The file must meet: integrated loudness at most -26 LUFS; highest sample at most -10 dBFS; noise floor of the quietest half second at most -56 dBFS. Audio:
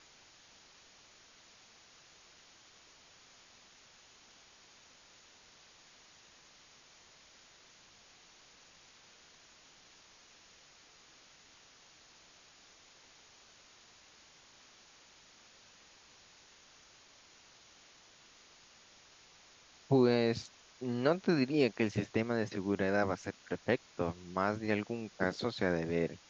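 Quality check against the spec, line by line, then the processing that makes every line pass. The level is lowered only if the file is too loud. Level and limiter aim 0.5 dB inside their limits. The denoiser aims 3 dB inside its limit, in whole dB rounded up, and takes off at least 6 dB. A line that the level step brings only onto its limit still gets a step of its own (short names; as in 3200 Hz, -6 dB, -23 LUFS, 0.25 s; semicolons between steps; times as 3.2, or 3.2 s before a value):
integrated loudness -33.5 LUFS: OK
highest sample -14.5 dBFS: OK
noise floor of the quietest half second -61 dBFS: OK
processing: none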